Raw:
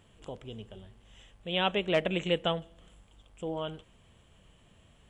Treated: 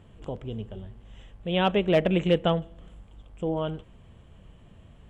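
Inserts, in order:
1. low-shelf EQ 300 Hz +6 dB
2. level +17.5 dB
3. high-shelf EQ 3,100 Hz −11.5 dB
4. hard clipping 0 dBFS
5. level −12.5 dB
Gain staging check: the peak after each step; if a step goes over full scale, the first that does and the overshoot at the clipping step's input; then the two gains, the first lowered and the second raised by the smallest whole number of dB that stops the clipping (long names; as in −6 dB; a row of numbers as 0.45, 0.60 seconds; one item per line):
−13.5, +4.0, +3.5, 0.0, −12.5 dBFS
step 2, 3.5 dB
step 2 +13.5 dB, step 5 −8.5 dB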